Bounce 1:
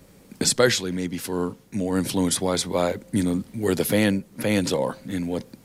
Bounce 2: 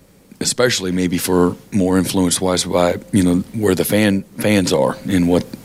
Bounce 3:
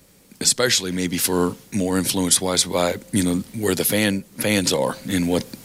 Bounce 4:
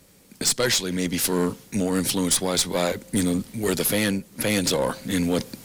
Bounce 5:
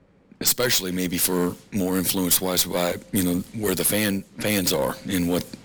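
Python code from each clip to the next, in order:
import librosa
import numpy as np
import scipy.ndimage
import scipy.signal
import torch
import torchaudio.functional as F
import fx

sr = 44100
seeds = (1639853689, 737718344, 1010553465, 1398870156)

y1 = fx.rider(x, sr, range_db=10, speed_s=0.5)
y1 = F.gain(torch.from_numpy(y1), 7.5).numpy()
y2 = fx.high_shelf(y1, sr, hz=2100.0, db=9.0)
y2 = F.gain(torch.from_numpy(y2), -6.5).numpy()
y3 = fx.tube_stage(y2, sr, drive_db=14.0, bias=0.4)
y4 = (np.kron(y3[::2], np.eye(2)[0]) * 2)[:len(y3)]
y4 = fx.env_lowpass(y4, sr, base_hz=1500.0, full_db=-18.0)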